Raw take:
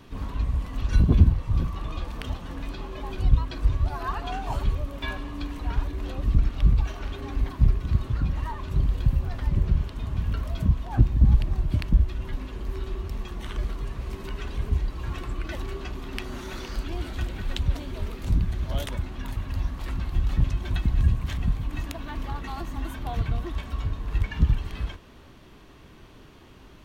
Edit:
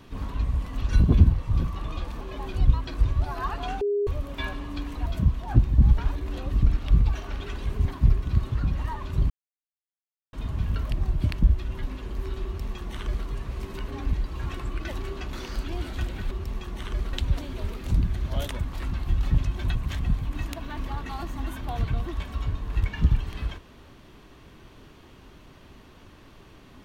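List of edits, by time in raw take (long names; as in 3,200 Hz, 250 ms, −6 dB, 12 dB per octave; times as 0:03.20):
0:02.21–0:02.85: remove
0:04.45–0:04.71: beep over 408 Hz −21.5 dBFS
0:07.18–0:07.43: swap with 0:14.38–0:14.77
0:08.88–0:09.91: silence
0:10.49–0:11.41: move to 0:05.70
0:12.95–0:13.77: duplicate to 0:17.51
0:15.97–0:16.53: remove
0:19.03–0:19.71: remove
0:20.81–0:21.13: remove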